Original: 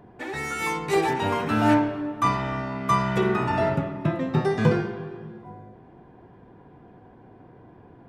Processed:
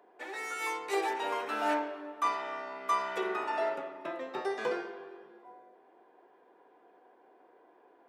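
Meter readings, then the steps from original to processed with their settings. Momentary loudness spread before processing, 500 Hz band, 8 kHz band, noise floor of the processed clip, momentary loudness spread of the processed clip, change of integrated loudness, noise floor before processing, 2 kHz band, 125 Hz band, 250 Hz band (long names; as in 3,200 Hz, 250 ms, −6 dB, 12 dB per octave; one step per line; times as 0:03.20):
14 LU, −8.5 dB, −7.0 dB, −63 dBFS, 11 LU, −9.5 dB, −51 dBFS, −7.0 dB, below −35 dB, −17.5 dB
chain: high-pass filter 390 Hz 24 dB per octave
level −7 dB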